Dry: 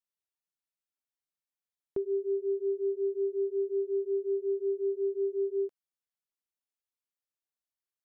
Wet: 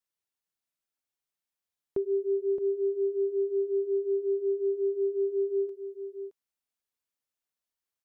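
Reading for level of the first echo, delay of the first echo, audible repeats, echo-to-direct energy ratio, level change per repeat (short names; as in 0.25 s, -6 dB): -10.5 dB, 0.62 s, 1, -10.5 dB, no steady repeat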